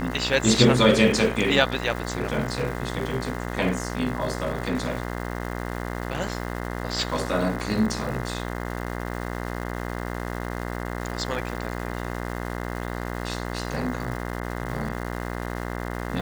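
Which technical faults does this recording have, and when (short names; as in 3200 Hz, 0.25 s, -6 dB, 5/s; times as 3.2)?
buzz 60 Hz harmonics 35 -31 dBFS
crackle 600/s -34 dBFS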